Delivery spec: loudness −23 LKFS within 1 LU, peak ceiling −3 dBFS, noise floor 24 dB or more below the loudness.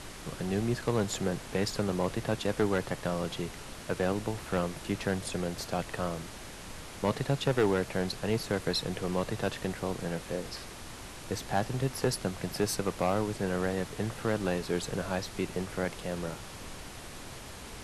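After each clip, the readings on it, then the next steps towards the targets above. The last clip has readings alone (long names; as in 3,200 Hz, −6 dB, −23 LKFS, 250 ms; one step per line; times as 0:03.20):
share of clipped samples 0.3%; peaks flattened at −19.0 dBFS; background noise floor −45 dBFS; target noise floor −57 dBFS; integrated loudness −32.5 LKFS; sample peak −19.0 dBFS; target loudness −23.0 LKFS
→ clipped peaks rebuilt −19 dBFS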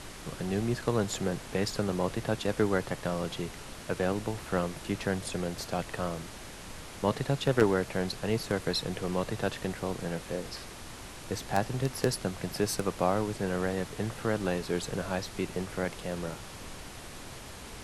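share of clipped samples 0.0%; background noise floor −45 dBFS; target noise floor −56 dBFS
→ noise reduction from a noise print 11 dB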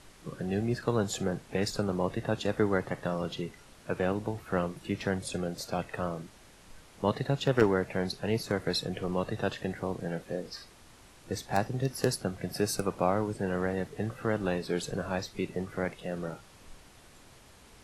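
background noise floor −56 dBFS; integrated loudness −32.0 LKFS; sample peak −10.0 dBFS; target loudness −23.0 LKFS
→ level +9 dB
brickwall limiter −3 dBFS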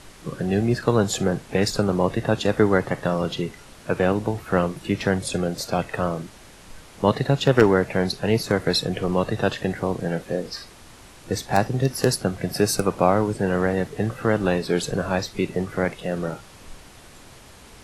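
integrated loudness −23.0 LKFS; sample peak −3.0 dBFS; background noise floor −47 dBFS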